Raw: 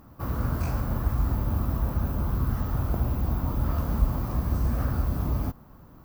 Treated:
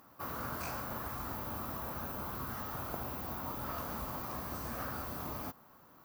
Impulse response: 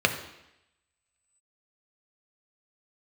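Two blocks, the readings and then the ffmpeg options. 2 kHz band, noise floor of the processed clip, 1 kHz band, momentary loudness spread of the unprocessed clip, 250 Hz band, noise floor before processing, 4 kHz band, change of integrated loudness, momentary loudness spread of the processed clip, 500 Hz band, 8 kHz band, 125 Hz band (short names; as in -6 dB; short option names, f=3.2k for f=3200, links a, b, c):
-1.5 dB, -60 dBFS, -3.0 dB, 2 LU, -12.5 dB, -51 dBFS, 0.0 dB, -11.0 dB, 2 LU, -6.5 dB, 0.0 dB, -20.0 dB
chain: -af "highpass=f=950:p=1"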